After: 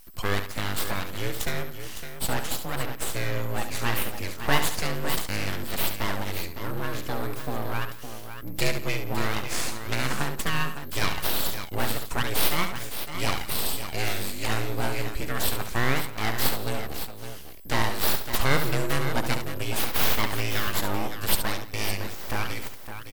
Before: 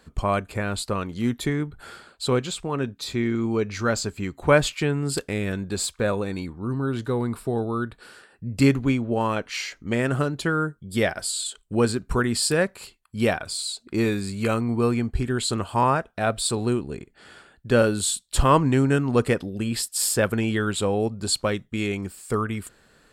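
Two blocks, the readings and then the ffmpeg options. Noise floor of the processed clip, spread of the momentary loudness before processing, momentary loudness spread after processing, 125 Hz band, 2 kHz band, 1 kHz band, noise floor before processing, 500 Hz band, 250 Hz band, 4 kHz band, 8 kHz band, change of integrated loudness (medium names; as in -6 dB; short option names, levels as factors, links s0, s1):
-36 dBFS, 9 LU, 8 LU, -5.5 dB, 0.0 dB, -3.0 dB, -60 dBFS, -8.5 dB, -10.0 dB, +0.5 dB, -3.5 dB, -4.0 dB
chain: -filter_complex "[0:a]tiltshelf=f=1200:g=-5.5,asplit=2[s0][s1];[s1]acompressor=threshold=0.0316:ratio=6,volume=0.944[s2];[s0][s2]amix=inputs=2:normalize=0,afreqshift=-25,aeval=exprs='val(0)+0.00562*sin(2*PI*13000*n/s)':c=same,aeval=exprs='abs(val(0))':c=same,asplit=2[s3][s4];[s4]aecho=0:1:70|172|560:0.376|0.119|0.335[s5];[s3][s5]amix=inputs=2:normalize=0,volume=0.708"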